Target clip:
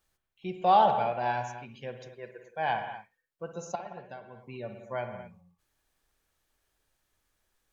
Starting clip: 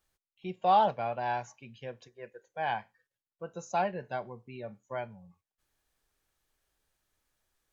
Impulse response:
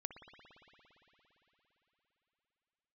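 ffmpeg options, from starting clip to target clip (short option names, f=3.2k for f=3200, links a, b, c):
-filter_complex "[0:a]asettb=1/sr,asplit=3[a][b][c];[a]atrim=end=3.754[d];[b]atrim=start=3.75:end=4.42,asetpts=PTS-STARTPTS,afade=t=in:d=0.004:c=qsin,afade=t=out:st=0.666:d=0.004:c=qsin,acompressor=threshold=-45dB:ratio=4[e];[c]atrim=start=4.416[f];[d][e]acrossfade=d=0.004:c1=hsin:c2=qsin[g];[g][f]acrossfade=d=0.004:c1=qsin:c2=hsin[h];[1:a]atrim=start_sample=2205,afade=t=out:st=0.31:d=0.01,atrim=end_sample=14112[i];[h][i]afir=irnorm=-1:irlink=0,volume=6.5dB"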